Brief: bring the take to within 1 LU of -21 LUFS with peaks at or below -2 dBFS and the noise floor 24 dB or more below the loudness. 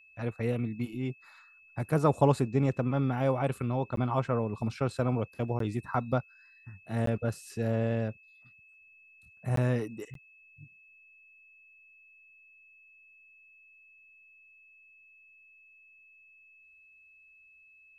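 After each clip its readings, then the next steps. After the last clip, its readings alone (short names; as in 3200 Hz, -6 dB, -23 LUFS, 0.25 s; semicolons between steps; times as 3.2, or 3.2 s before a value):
dropouts 5; longest dropout 13 ms; steady tone 2600 Hz; tone level -56 dBFS; loudness -30.5 LUFS; peak -9.5 dBFS; loudness target -21.0 LUFS
-> interpolate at 3.96/5.59/7.06/9.56/10.14, 13 ms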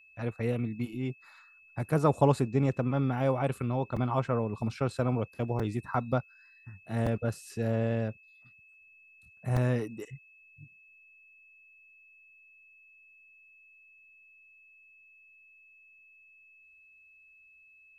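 dropouts 0; steady tone 2600 Hz; tone level -56 dBFS
-> notch 2600 Hz, Q 30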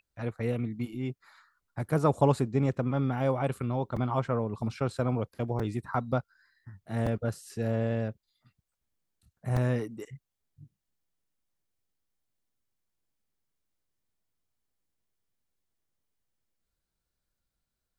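steady tone none; loudness -30.5 LUFS; peak -9.5 dBFS; loudness target -21.0 LUFS
-> gain +9.5 dB; limiter -2 dBFS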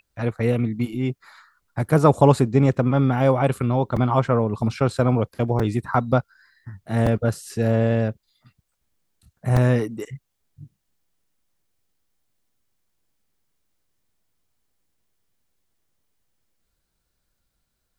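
loudness -21.0 LUFS; peak -2.0 dBFS; noise floor -76 dBFS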